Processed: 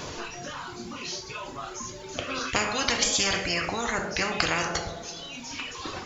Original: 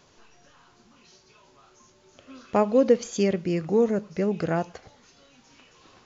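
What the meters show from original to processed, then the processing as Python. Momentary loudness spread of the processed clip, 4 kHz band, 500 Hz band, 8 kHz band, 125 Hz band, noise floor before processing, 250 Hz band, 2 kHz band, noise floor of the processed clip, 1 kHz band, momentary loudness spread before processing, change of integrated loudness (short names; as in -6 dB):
13 LU, +17.0 dB, -9.5 dB, n/a, -5.0 dB, -59 dBFS, -8.5 dB, +12.5 dB, -41 dBFS, +3.0 dB, 7 LU, -4.5 dB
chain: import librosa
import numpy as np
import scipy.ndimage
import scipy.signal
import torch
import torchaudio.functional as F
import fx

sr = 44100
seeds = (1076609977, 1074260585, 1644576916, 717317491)

y = fx.dereverb_blind(x, sr, rt60_s=2.0)
y = fx.rev_double_slope(y, sr, seeds[0], early_s=0.44, late_s=1.9, knee_db=-25, drr_db=4.0)
y = fx.spectral_comp(y, sr, ratio=10.0)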